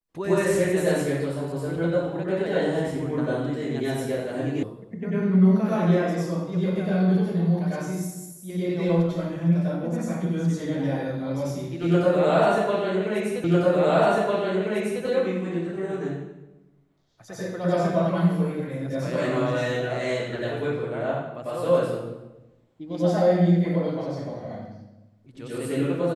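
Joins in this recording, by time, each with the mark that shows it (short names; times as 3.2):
4.63 sound cut off
13.44 repeat of the last 1.6 s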